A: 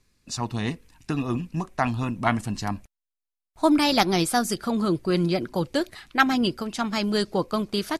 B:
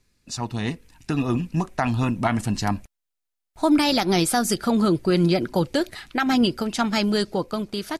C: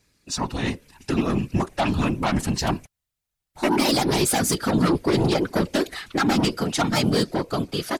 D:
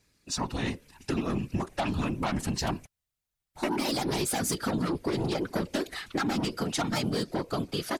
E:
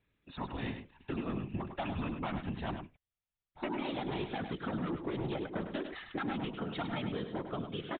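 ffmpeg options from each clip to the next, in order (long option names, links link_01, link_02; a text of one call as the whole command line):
ffmpeg -i in.wav -af "bandreject=frequency=1100:width=12,alimiter=limit=-15.5dB:level=0:latency=1:release=110,dynaudnorm=framelen=150:gausssize=13:maxgain=5dB" out.wav
ffmpeg -i in.wav -af "lowshelf=frequency=110:gain=-8.5,aeval=exprs='0.355*sin(PI/2*2.51*val(0)/0.355)':channel_layout=same,afftfilt=real='hypot(re,im)*cos(2*PI*random(0))':imag='hypot(re,im)*sin(2*PI*random(1))':win_size=512:overlap=0.75,volume=-1.5dB" out.wav
ffmpeg -i in.wav -af "acompressor=threshold=-22dB:ratio=6,volume=-3.5dB" out.wav
ffmpeg -i in.wav -filter_complex "[0:a]aresample=8000,aresample=44100,asplit=2[link_01][link_02];[link_02]aecho=0:1:102:0.398[link_03];[link_01][link_03]amix=inputs=2:normalize=0,volume=-7.5dB" out.wav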